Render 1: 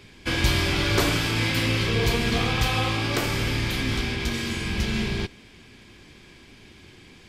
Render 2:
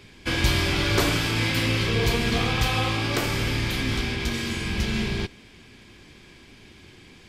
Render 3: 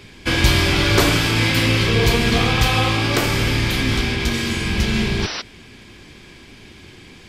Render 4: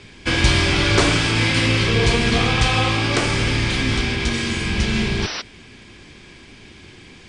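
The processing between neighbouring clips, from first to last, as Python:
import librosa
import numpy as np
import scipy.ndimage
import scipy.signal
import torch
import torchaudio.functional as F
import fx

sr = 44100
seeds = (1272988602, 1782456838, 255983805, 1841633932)

y1 = x
y2 = fx.spec_paint(y1, sr, seeds[0], shape='noise', start_s=5.22, length_s=0.2, low_hz=270.0, high_hz=6000.0, level_db=-34.0)
y2 = y2 * 10.0 ** (6.5 / 20.0)
y3 = scipy.signal.sosfilt(scipy.signal.cheby1(8, 1.0, 9700.0, 'lowpass', fs=sr, output='sos'), y2)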